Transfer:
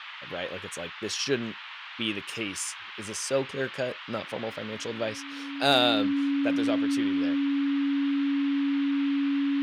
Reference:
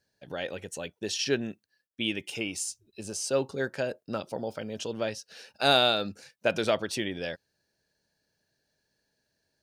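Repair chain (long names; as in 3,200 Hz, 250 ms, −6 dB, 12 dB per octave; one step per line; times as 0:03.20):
clipped peaks rebuilt −10.5 dBFS
notch filter 280 Hz, Q 30
noise reduction from a noise print 30 dB
level 0 dB, from 0:06.07 +5.5 dB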